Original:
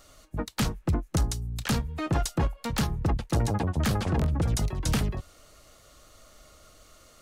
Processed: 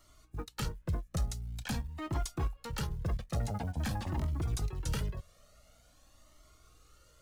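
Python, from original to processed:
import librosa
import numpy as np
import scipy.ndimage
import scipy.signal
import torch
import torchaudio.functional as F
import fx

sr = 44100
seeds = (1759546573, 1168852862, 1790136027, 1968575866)

y = fx.add_hum(x, sr, base_hz=60, snr_db=33)
y = fx.quant_float(y, sr, bits=4)
y = fx.comb_cascade(y, sr, direction='rising', hz=0.47)
y = F.gain(torch.from_numpy(y), -5.0).numpy()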